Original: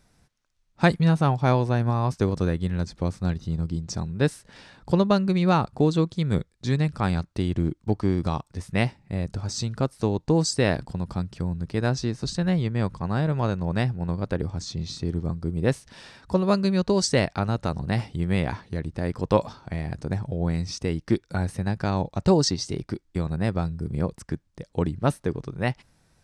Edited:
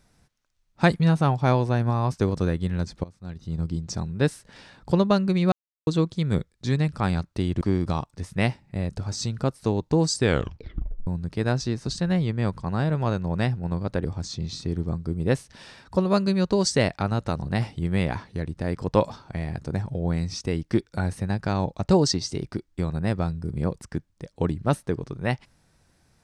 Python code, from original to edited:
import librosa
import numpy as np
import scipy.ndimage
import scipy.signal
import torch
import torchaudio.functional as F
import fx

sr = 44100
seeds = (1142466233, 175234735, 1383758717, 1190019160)

y = fx.edit(x, sr, fx.fade_in_from(start_s=3.04, length_s=0.57, curve='qua', floor_db=-19.5),
    fx.silence(start_s=5.52, length_s=0.35),
    fx.cut(start_s=7.61, length_s=0.37),
    fx.tape_stop(start_s=10.55, length_s=0.89), tone=tone)